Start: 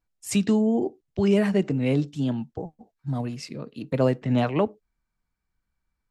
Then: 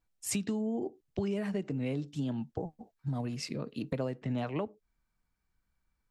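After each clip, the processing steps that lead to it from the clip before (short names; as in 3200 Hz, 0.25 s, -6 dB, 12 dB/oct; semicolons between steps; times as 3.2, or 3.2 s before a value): compressor 6:1, threshold -31 dBFS, peak gain reduction 14.5 dB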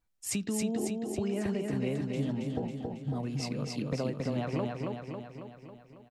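feedback echo 0.274 s, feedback 59%, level -3 dB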